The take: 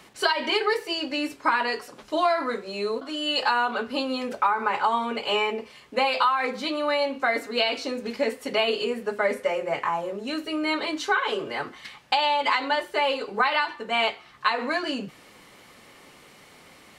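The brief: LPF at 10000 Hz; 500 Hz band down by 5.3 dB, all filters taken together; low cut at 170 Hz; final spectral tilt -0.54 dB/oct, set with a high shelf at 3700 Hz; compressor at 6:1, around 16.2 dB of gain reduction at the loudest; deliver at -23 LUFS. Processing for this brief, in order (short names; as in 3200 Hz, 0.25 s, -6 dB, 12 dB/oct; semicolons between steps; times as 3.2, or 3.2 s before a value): HPF 170 Hz; LPF 10000 Hz; bell 500 Hz -6.5 dB; high shelf 3700 Hz -6 dB; compressor 6:1, threshold -38 dBFS; gain +17.5 dB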